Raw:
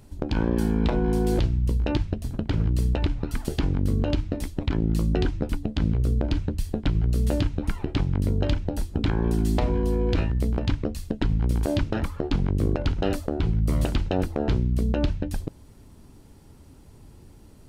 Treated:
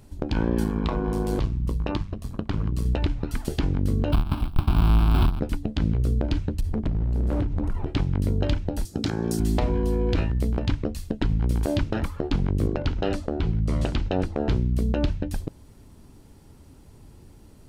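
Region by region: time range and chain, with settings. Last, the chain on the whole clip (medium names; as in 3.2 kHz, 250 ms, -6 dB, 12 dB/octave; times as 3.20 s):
0.64–2.86 s: peaking EQ 1.1 kHz +12 dB 0.31 oct + AM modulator 100 Hz, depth 50%
4.12–5.40 s: square wave that keeps the level + treble shelf 3.3 kHz -8.5 dB + static phaser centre 1.9 kHz, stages 6
6.60–7.86 s: tilt shelf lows +8.5 dB, about 1.3 kHz + compression, threshold -17 dBFS + overload inside the chain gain 20.5 dB
8.85–9.40 s: high-pass 120 Hz + resonant high shelf 4 kHz +10 dB, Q 1.5 + band-stop 1 kHz, Q 6.1
12.67–14.37 s: low-pass 6.9 kHz + hum notches 50/100/150/200/250/300/350 Hz
whole clip: none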